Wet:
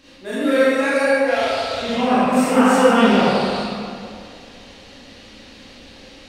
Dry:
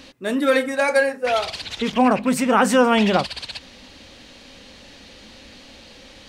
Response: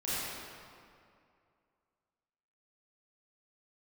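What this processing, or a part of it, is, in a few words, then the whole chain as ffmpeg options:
stairwell: -filter_complex "[1:a]atrim=start_sample=2205[s0];[0:a][s0]afir=irnorm=-1:irlink=0,volume=0.596"

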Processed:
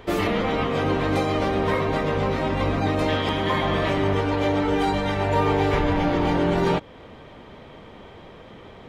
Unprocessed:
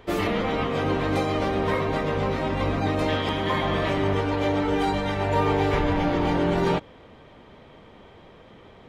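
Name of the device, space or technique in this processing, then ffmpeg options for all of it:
parallel compression: -filter_complex "[0:a]asplit=2[s0][s1];[s1]acompressor=threshold=0.0224:ratio=6,volume=0.794[s2];[s0][s2]amix=inputs=2:normalize=0"

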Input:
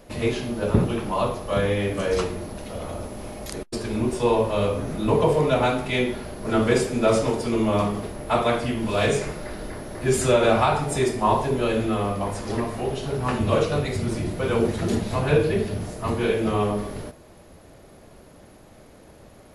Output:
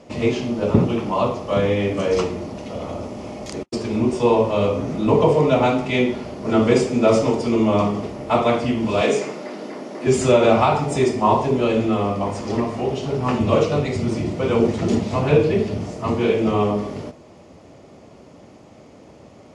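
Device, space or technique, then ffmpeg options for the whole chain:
car door speaker: -filter_complex "[0:a]asettb=1/sr,asplit=3[s0][s1][s2];[s0]atrim=end=9.014[s3];[s1]atrim=start=9.01:end=10.07,asetpts=PTS-STARTPTS,afade=t=in:d=0.004:c=qsin,afade=t=out:st=1.056:d=0.004:c=qsin,highpass=f=200:w=0.5412,highpass=f=200:w=1.3066[s4];[s2]atrim=start=10.066[s5];[s3][s4]acrossfade=d=0.004:c1=hsin:c2=qsin[s6];[s6][s5]acrossfade=d=0.004:c1=qsin:c2=hsin,highpass=93,equalizer=f=260:t=q:w=4:g=3,equalizer=f=1600:t=q:w=4:g=-9,equalizer=f=3900:t=q:w=4:g=-6,lowpass=f=7200:w=0.5412,lowpass=f=7200:w=1.3066,volume=1.58"

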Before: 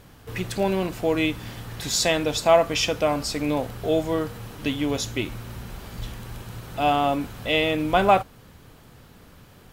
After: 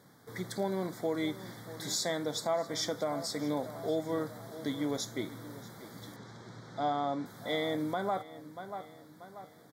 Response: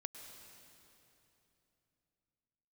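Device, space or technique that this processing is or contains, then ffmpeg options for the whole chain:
PA system with an anti-feedback notch: -filter_complex "[0:a]asettb=1/sr,asplit=3[s0][s1][s2];[s0]atrim=end=6.164[s3];[s1]atrim=start=6.16:end=7.26,asetpts=PTS-STARTPTS,afade=t=in:d=0.004:c=qsin,afade=t=out:st=1.096:d=0.004:c=qsin,lowpass=f=6600:w=0.5412,lowpass=f=6600:w=1.3066[s4];[s2]atrim=start=7.256[s5];[s3][s4]acrossfade=d=0.004:c1=hsin:c2=qsin[s6];[s6][s5]acrossfade=d=0.004:c1=qsin:c2=hsin,highpass=f=130:w=0.5412,highpass=f=130:w=1.3066,asuperstop=centerf=2700:order=8:qfactor=2.4,asplit=2[s7][s8];[s8]adelay=636,lowpass=f=4700:p=1,volume=0.158,asplit=2[s9][s10];[s10]adelay=636,lowpass=f=4700:p=1,volume=0.45,asplit=2[s11][s12];[s12]adelay=636,lowpass=f=4700:p=1,volume=0.45,asplit=2[s13][s14];[s14]adelay=636,lowpass=f=4700:p=1,volume=0.45[s15];[s7][s9][s11][s13][s15]amix=inputs=5:normalize=0,alimiter=limit=0.2:level=0:latency=1:release=246,volume=0.398"

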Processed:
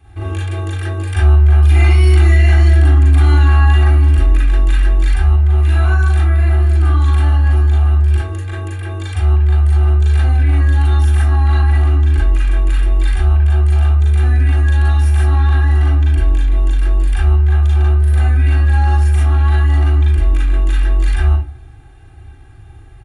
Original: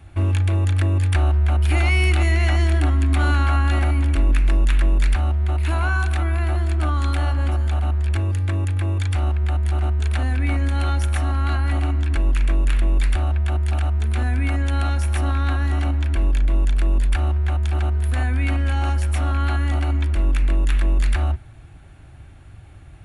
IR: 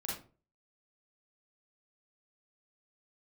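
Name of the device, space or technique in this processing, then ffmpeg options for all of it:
microphone above a desk: -filter_complex "[0:a]aecho=1:1:2.5:0.83[s0];[1:a]atrim=start_sample=2205[s1];[s0][s1]afir=irnorm=-1:irlink=0,volume=0.891"

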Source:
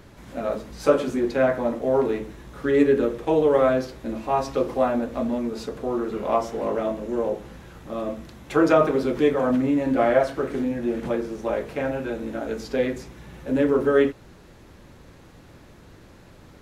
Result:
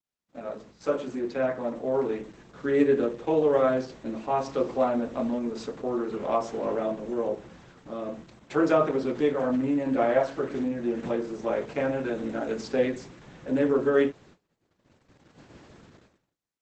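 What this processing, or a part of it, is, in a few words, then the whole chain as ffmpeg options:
video call: -af "highpass=110,dynaudnorm=f=350:g=7:m=6.31,agate=range=0.00708:threshold=0.01:ratio=16:detection=peak,volume=0.355" -ar 48000 -c:a libopus -b:a 12k

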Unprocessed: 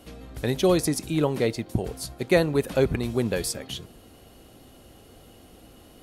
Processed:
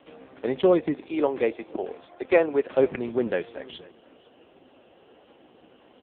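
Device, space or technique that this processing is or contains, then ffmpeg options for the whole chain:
satellite phone: -filter_complex "[0:a]asettb=1/sr,asplit=3[s0][s1][s2];[s0]atrim=end=1.014[s3];[s1]atrim=start=1.01:end=2.72,asetpts=PTS-STARTPTS,afade=t=in:d=0.004:c=qsin,afade=t=out:st=1.706:d=0.004:c=qsin,highpass=270[s4];[s2]atrim=start=2.716[s5];[s3][s4]acrossfade=d=0.004:c1=hsin:c2=qsin[s6];[s6][s5]acrossfade=d=0.004:c1=qsin:c2=hsin,highpass=310,lowpass=3300,aecho=1:1:495:0.0708,volume=1.5" -ar 8000 -c:a libopencore_amrnb -b:a 5150

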